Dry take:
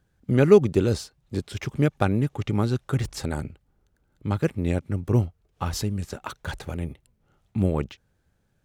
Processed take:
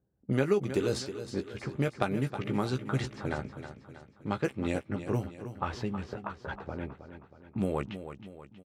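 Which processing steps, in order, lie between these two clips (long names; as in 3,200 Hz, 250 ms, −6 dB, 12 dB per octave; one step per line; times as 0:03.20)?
low-pass that shuts in the quiet parts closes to 480 Hz, open at −18 dBFS
high-pass filter 130 Hz 6 dB per octave
low-shelf EQ 400 Hz −6 dB
downward compressor 6 to 1, threshold −24 dBFS, peak gain reduction 11 dB
double-tracking delay 15 ms −8 dB
on a send: repeating echo 318 ms, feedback 49%, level −11 dB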